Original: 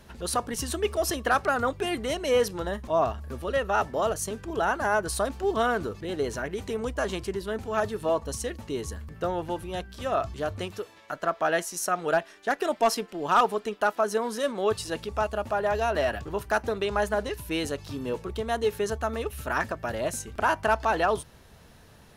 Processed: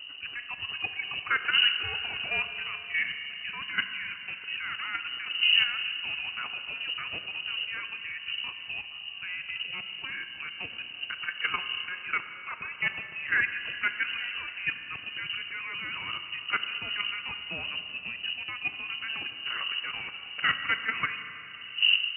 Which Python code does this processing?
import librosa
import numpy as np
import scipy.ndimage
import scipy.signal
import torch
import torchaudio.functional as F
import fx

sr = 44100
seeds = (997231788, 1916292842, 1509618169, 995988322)

y = fx.dmg_wind(x, sr, seeds[0], corner_hz=150.0, level_db=-33.0)
y = fx.level_steps(y, sr, step_db=11)
y = fx.peak_eq(y, sr, hz=540.0, db=-8.0, octaves=0.92)
y = fx.freq_invert(y, sr, carrier_hz=2900)
y = scipy.signal.sosfilt(scipy.signal.butter(2, 80.0, 'highpass', fs=sr, output='sos'), y)
y = fx.rev_schroeder(y, sr, rt60_s=3.2, comb_ms=29, drr_db=8.0)